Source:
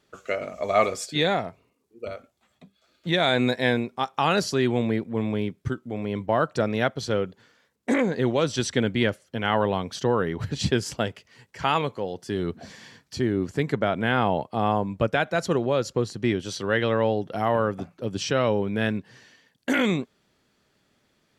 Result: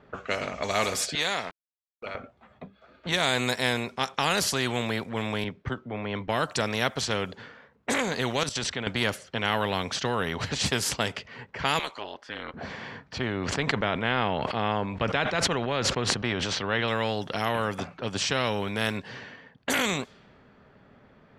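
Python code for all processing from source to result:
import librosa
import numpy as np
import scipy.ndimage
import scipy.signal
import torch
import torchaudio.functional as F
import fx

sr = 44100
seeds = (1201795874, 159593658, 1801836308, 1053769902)

y = fx.chain(x, sr, fx.highpass(hz=1300.0, slope=6),
    fx.sample_gate(floor_db=-51.5), at=(1.15, 2.15))
y = fx.chain(y, sr, fx.spacing_loss(db_at_10k=21),
    fx.band_widen(depth_pct=40), at=(5.44, 6.28))
y = fx.chain(y, sr, fx.highpass(hz=61.0, slope=12),
    fx.level_steps(step_db=16), at=(8.43, 8.87))
y = fx.chain(y, sr, fx.highpass(hz=980.0, slope=12),
    fx.ring_mod(carrier_hz=110.0), at=(11.79, 12.54))
y = fx.chain(y, sr, fx.lowpass(hz=2700.0, slope=12),
    fx.sustainer(db_per_s=51.0), at=(13.18, 16.88))
y = fx.env_lowpass(y, sr, base_hz=1500.0, full_db=-21.0)
y = fx.peak_eq(y, sr, hz=330.0, db=-9.0, octaves=0.21)
y = fx.spectral_comp(y, sr, ratio=2.0)
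y = y * librosa.db_to_amplitude(1.5)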